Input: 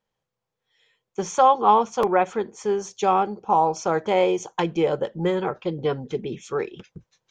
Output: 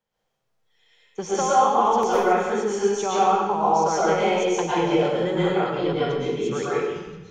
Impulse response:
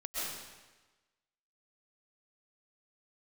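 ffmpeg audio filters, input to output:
-filter_complex "[0:a]acrossover=split=120|1200[link_01][link_02][link_03];[link_01]acompressor=threshold=-49dB:ratio=4[link_04];[link_02]acompressor=threshold=-23dB:ratio=4[link_05];[link_03]acompressor=threshold=-33dB:ratio=4[link_06];[link_04][link_05][link_06]amix=inputs=3:normalize=0[link_07];[1:a]atrim=start_sample=2205,asetrate=48510,aresample=44100[link_08];[link_07][link_08]afir=irnorm=-1:irlink=0,volume=3.5dB"

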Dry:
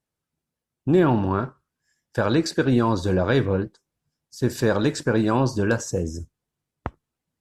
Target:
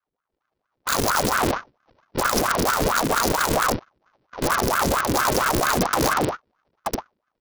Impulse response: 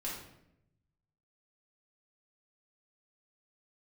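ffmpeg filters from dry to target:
-filter_complex "[0:a]asplit=2[link_01][link_02];[link_02]aecho=0:1:72.89|116.6:0.891|0.398[link_03];[link_01][link_03]amix=inputs=2:normalize=0,acompressor=threshold=-20dB:ratio=4,aresample=11025,acrusher=samples=23:mix=1:aa=0.000001,aresample=44100,aeval=exprs='(mod(20*val(0)+1,2)-1)/20':channel_layout=same,dynaudnorm=framelen=260:gausssize=5:maxgain=11.5dB,aeval=exprs='val(0)*sin(2*PI*810*n/s+810*0.75/4.4*sin(2*PI*4.4*n/s))':channel_layout=same,volume=1.5dB"

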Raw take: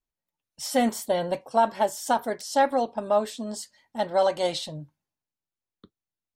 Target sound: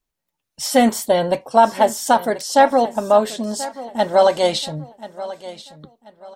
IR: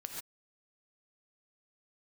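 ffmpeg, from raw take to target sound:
-af "aecho=1:1:1034|2068|3102:0.158|0.0475|0.0143,volume=8.5dB"

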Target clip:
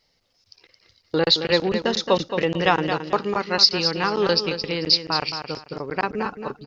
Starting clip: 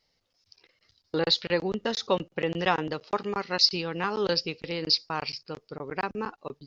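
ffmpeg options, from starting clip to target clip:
ffmpeg -i in.wav -af "aecho=1:1:220|440|660:0.376|0.094|0.0235,volume=6dB" out.wav

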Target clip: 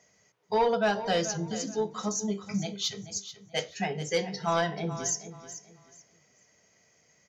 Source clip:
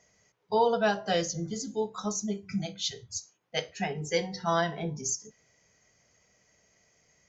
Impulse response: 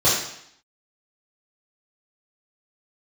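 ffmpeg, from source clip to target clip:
-filter_complex "[0:a]highpass=100,asoftclip=type=tanh:threshold=-18dB,asplit=2[link_01][link_02];[link_02]aecho=0:1:433|866|1299:0.224|0.0582|0.0151[link_03];[link_01][link_03]amix=inputs=2:normalize=0,volume=1.5dB"

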